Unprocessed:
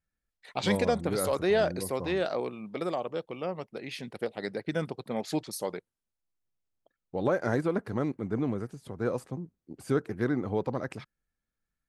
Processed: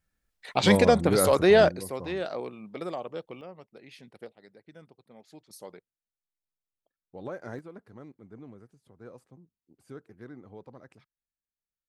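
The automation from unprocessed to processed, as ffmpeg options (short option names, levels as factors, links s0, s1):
-af "asetnsamples=n=441:p=0,asendcmd='1.69 volume volume -3dB;3.41 volume volume -11dB;4.33 volume volume -20dB;5.5 volume volume -11dB;7.59 volume volume -17dB',volume=2.24"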